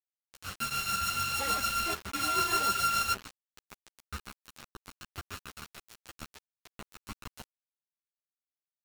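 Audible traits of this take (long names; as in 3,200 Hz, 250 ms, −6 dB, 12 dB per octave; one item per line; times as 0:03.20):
a buzz of ramps at a fixed pitch in blocks of 32 samples
tremolo triangle 6.8 Hz, depth 50%
a quantiser's noise floor 6 bits, dither none
a shimmering, thickened sound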